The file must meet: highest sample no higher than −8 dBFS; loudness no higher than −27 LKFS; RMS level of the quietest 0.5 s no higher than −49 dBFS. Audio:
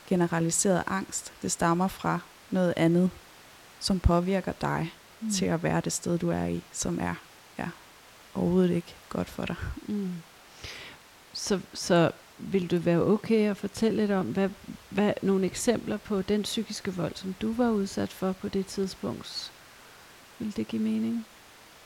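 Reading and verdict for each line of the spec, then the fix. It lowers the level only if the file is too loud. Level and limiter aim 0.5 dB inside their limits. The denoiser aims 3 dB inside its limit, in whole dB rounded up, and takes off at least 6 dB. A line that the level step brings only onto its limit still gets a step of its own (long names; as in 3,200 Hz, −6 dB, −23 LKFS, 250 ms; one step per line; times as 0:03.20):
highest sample −9.0 dBFS: in spec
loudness −28.5 LKFS: in spec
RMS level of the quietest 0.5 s −53 dBFS: in spec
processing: no processing needed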